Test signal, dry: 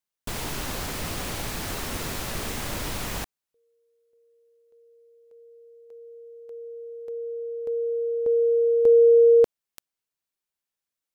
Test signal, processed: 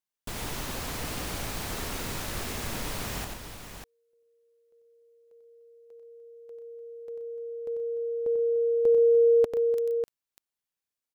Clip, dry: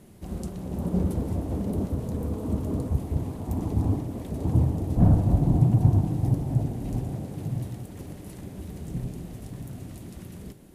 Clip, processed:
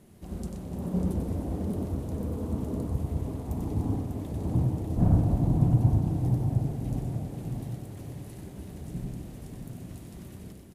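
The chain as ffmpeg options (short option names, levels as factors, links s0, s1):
-af "aecho=1:1:93|127|298|596:0.501|0.237|0.211|0.398,volume=0.596"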